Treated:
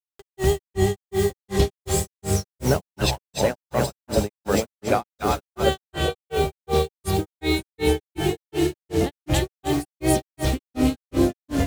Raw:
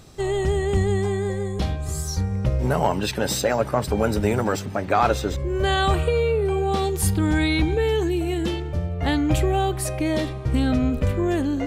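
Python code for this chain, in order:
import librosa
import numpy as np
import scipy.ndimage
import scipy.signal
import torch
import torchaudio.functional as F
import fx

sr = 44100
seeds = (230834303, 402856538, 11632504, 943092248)

p1 = fx.low_shelf(x, sr, hz=180.0, db=-7.0)
p2 = p1 + fx.echo_split(p1, sr, split_hz=690.0, low_ms=565, high_ms=287, feedback_pct=52, wet_db=-3, dry=0)
p3 = fx.quant_dither(p2, sr, seeds[0], bits=6, dither='none')
p4 = fx.rider(p3, sr, range_db=3, speed_s=0.5)
p5 = fx.granulator(p4, sr, seeds[1], grain_ms=225.0, per_s=2.7, spray_ms=11.0, spread_st=0)
p6 = fx.dynamic_eq(p5, sr, hz=1400.0, q=0.77, threshold_db=-37.0, ratio=4.0, max_db=-7)
y = p6 * 10.0 ** (5.5 / 20.0)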